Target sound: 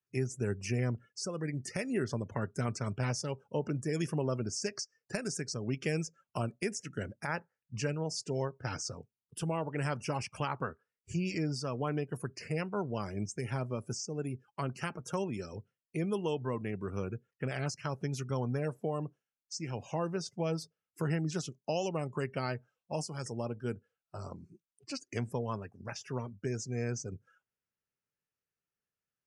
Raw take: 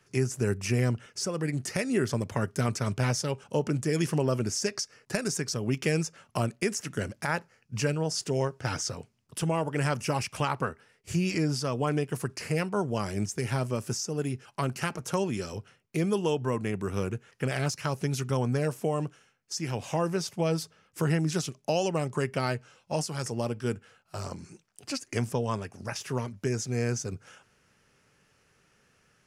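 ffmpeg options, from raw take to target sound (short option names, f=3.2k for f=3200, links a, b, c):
-af "afftdn=nr=25:nf=-43,volume=-6dB"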